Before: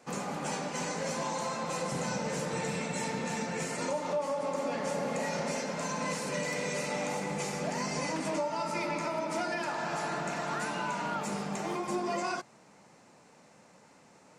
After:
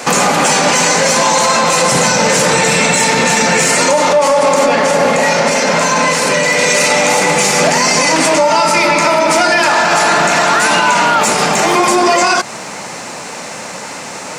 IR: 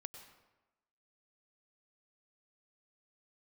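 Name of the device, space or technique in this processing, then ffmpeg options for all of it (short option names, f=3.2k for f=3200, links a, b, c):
mastering chain: -filter_complex "[0:a]equalizer=f=580:t=o:w=0.77:g=1.5,acompressor=threshold=-36dB:ratio=3,asoftclip=type=tanh:threshold=-28.5dB,tiltshelf=f=880:g=-5,alimiter=level_in=34dB:limit=-1dB:release=50:level=0:latency=1,bandreject=f=50:t=h:w=6,bandreject=f=100:t=h:w=6,bandreject=f=150:t=h:w=6,bandreject=f=200:t=h:w=6,asettb=1/sr,asplit=3[a][b][c];[a]atrim=end=4.664[d];[b]atrim=start=4.66:end=6.59,asetpts=PTS-STARTPTS,afade=t=in:d=0.004:c=qsin,afade=t=out:st=1.926:d=0.004:c=qsin,highshelf=f=4.3k:g=-6[e];[c]atrim=start=6.586[f];[d][e]acrossfade=d=0.004:c1=hsin:c2=qsin[g];[g][f]acrossfade=d=0.004:c1=qsin:c2=hsin,volume=-2dB"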